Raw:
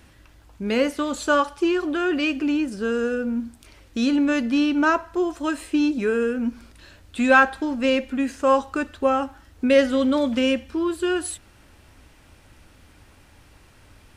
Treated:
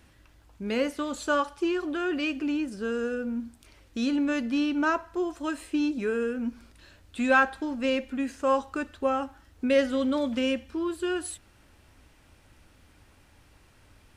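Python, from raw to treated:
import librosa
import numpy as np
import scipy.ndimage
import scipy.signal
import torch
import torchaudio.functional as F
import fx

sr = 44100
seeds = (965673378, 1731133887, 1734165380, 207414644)

y = x * librosa.db_to_amplitude(-6.0)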